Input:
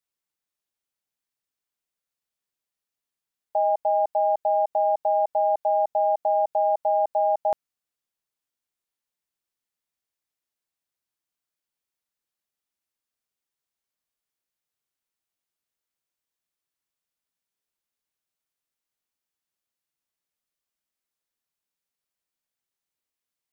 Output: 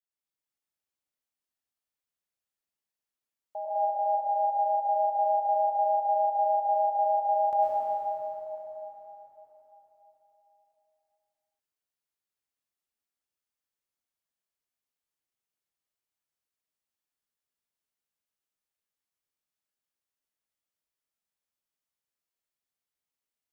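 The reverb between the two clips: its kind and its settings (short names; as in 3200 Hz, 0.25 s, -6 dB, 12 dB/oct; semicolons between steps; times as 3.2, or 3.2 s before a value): plate-style reverb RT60 4.1 s, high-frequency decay 0.75×, pre-delay 90 ms, DRR -9.5 dB; gain -13.5 dB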